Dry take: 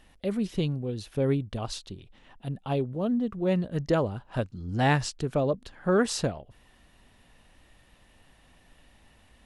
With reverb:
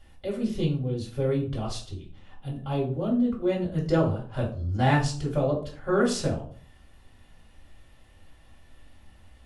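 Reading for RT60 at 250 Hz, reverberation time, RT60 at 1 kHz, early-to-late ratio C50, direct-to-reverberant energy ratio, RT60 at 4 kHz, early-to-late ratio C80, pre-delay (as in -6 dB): 0.60 s, 0.45 s, 0.40 s, 8.5 dB, -4.5 dB, 0.30 s, 13.5 dB, 3 ms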